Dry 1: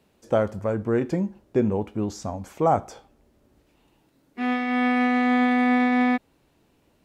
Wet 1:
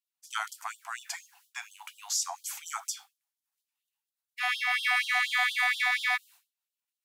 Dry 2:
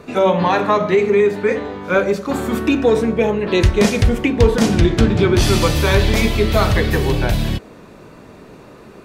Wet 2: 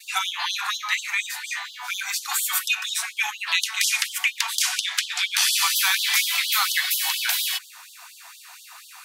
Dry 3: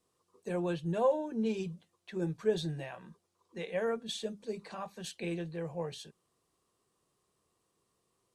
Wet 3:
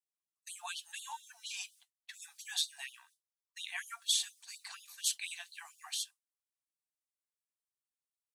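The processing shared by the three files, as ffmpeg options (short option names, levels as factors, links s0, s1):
-filter_complex "[0:a]agate=range=0.0224:threshold=0.00562:ratio=3:detection=peak,acrossover=split=1100|2800[s0][s1][s2];[s0]acompressor=threshold=0.0501:ratio=4[s3];[s1]acompressor=threshold=0.0501:ratio=4[s4];[s2]acompressor=threshold=0.0178:ratio=4[s5];[s3][s4][s5]amix=inputs=3:normalize=0,crystalizer=i=4.5:c=0,afftfilt=real='re*gte(b*sr/1024,650*pow(3000/650,0.5+0.5*sin(2*PI*4.2*pts/sr)))':imag='im*gte(b*sr/1024,650*pow(3000/650,0.5+0.5*sin(2*PI*4.2*pts/sr)))':win_size=1024:overlap=0.75"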